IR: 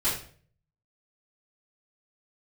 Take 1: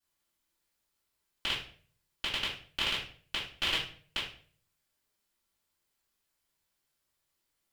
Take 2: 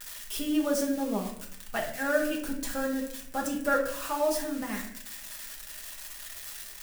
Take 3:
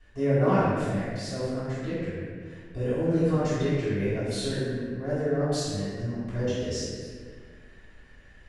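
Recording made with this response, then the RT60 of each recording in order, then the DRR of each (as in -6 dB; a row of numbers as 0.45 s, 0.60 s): 1; 0.50 s, 0.65 s, 1.8 s; -14.5 dB, -1.5 dB, -15.0 dB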